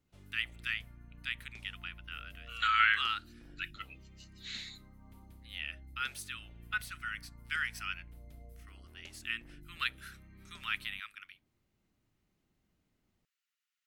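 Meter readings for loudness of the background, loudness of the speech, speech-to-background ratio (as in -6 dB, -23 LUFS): -56.0 LUFS, -36.0 LUFS, 20.0 dB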